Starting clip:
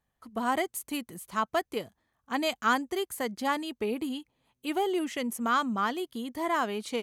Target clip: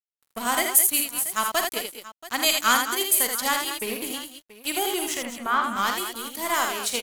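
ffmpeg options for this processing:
-filter_complex "[0:a]crystalizer=i=7.5:c=0,aeval=exprs='sgn(val(0))*max(abs(val(0))-0.0188,0)':c=same,asettb=1/sr,asplit=3[s0][s1][s2];[s0]atrim=end=5.174[s3];[s1]atrim=start=5.17:end=5.64,asetpts=PTS-STARTPTS,afade=t=in:d=0.004:c=qsin,afade=t=out:st=0.466:d=0.004:c=qsin,lowpass=1800[s4];[s2]atrim=start=5.636[s5];[s3][s4]acrossfade=d=0.004:c1=hsin:c2=qsin[s6];[s6][s5]acrossfade=d=0.004:c1=qsin:c2=hsin,asplit=2[s7][s8];[s8]aecho=0:1:46|80|192|213|681:0.355|0.562|0.126|0.299|0.141[s9];[s7][s9]amix=inputs=2:normalize=0"

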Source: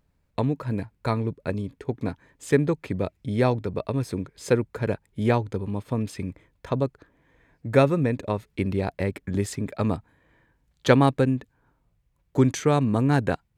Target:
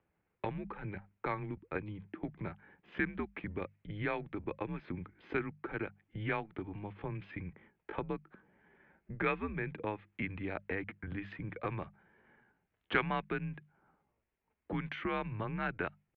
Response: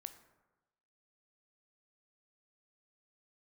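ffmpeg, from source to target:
-filter_complex "[0:a]atempo=0.84,acrossover=split=1400[s0][s1];[s0]acompressor=threshold=0.0251:ratio=6[s2];[s2][s1]amix=inputs=2:normalize=0,highpass=f=200:t=q:w=0.5412,highpass=f=200:t=q:w=1.307,lowpass=f=2900:t=q:w=0.5176,lowpass=f=2900:t=q:w=0.7071,lowpass=f=2900:t=q:w=1.932,afreqshift=-100,bandreject=f=50:t=h:w=6,bandreject=f=100:t=h:w=6,bandreject=f=150:t=h:w=6,bandreject=f=200:t=h:w=6,volume=0.794"

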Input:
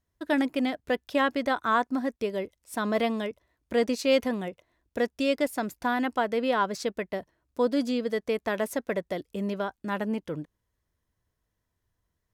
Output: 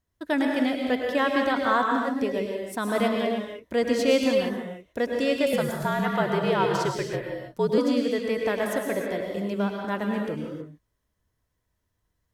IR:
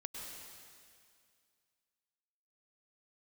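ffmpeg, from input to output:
-filter_complex "[1:a]atrim=start_sample=2205,afade=t=out:st=0.38:d=0.01,atrim=end_sample=17199[s0];[0:a][s0]afir=irnorm=-1:irlink=0,asettb=1/sr,asplit=3[s1][s2][s3];[s1]atrim=end=5.534[s4];[s2]atrim=start=5.53:end=7.78,asetpts=PTS-STARTPTS,afade=t=in:d=0.004:c=qsin,afade=t=out:st=2.246:d=0.004:c=qsin,afreqshift=-61[s5];[s3]atrim=start=7.776[s6];[s4][s5]acrossfade=d=0.004:c1=hsin:c2=qsin[s7];[s7][s6]acrossfade=d=0.004:c1=qsin:c2=hsin,volume=1.78"

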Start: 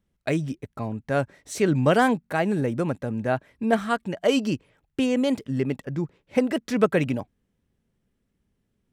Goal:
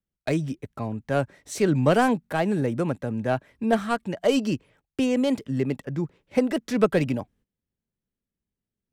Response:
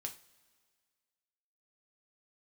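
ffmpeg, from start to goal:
-filter_complex "[0:a]agate=range=0.178:threshold=0.00158:ratio=16:detection=peak,acrossover=split=280|1200|4200[s0][s1][s2][s3];[s2]aeval=exprs='clip(val(0),-1,0.0119)':c=same[s4];[s0][s1][s4][s3]amix=inputs=4:normalize=0"

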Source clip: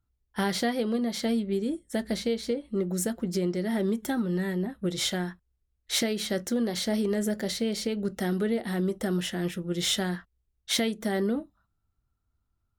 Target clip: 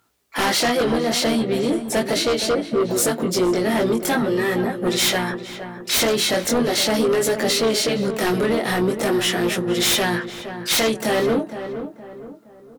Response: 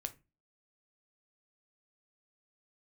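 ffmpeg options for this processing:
-filter_complex "[0:a]highpass=360,asplit=3[s0][s1][s2];[s1]asetrate=29433,aresample=44100,atempo=1.49831,volume=0.282[s3];[s2]asetrate=58866,aresample=44100,atempo=0.749154,volume=0.178[s4];[s0][s3][s4]amix=inputs=3:normalize=0,flanger=delay=16.5:depth=6.4:speed=0.41,aeval=exprs='0.188*sin(PI/2*5.01*val(0)/0.188)':c=same,alimiter=limit=0.0668:level=0:latency=1:release=304,asplit=2[s5][s6];[s6]adelay=467,lowpass=f=1600:p=1,volume=0.335,asplit=2[s7][s8];[s8]adelay=467,lowpass=f=1600:p=1,volume=0.41,asplit=2[s9][s10];[s10]adelay=467,lowpass=f=1600:p=1,volume=0.41,asplit=2[s11][s12];[s12]adelay=467,lowpass=f=1600:p=1,volume=0.41[s13];[s7][s9][s11][s13]amix=inputs=4:normalize=0[s14];[s5][s14]amix=inputs=2:normalize=0,volume=2.66"

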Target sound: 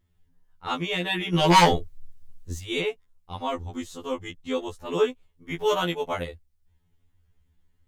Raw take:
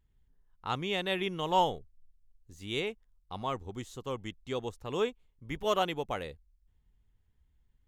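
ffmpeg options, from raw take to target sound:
-filter_complex "[0:a]acontrast=71,asettb=1/sr,asplit=3[s0][s1][s2];[s0]atrim=end=1.344[s3];[s1]atrim=start=1.34:end=2.59,asetpts=PTS-STARTPTS,afade=t=in:d=0.004:c=qsin,afade=t=out:st=1.246:d=0.004:c=qsin,aeval=exprs='0.335*(cos(1*acos(clip(val(0)/0.335,-1,1)))-cos(1*PI/2))+0.168*(cos(5*acos(clip(val(0)/0.335,-1,1)))-cos(5*PI/2))':c=same[s4];[s2]atrim=start=2.586[s5];[s3][s4]acrossfade=d=0.004:c1=hsin:c2=qsin[s6];[s6][s5]acrossfade=d=0.004:c1=qsin:c2=hsin,afftfilt=real='re*2*eq(mod(b,4),0)':imag='im*2*eq(mod(b,4),0)':win_size=2048:overlap=0.75,volume=1.19"

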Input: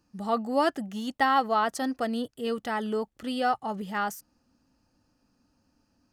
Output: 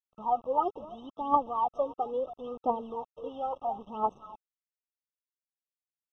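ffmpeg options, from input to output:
-filter_complex "[0:a]asplit=2[s0][s1];[s1]acompressor=threshold=0.0251:ratio=16,volume=1.26[s2];[s0][s2]amix=inputs=2:normalize=0,highpass=400,aecho=1:1:266:0.158,aphaser=in_gain=1:out_gain=1:delay=2.7:decay=0.8:speed=0.74:type=triangular,aresample=16000,acrusher=bits=5:mix=0:aa=0.000001,aresample=44100,lowpass=1000,asetrate=46722,aresample=44100,atempo=0.943874,afftfilt=real='re*eq(mod(floor(b*sr/1024/1300),2),0)':imag='im*eq(mod(floor(b*sr/1024/1300),2),0)':win_size=1024:overlap=0.75,volume=0.473"

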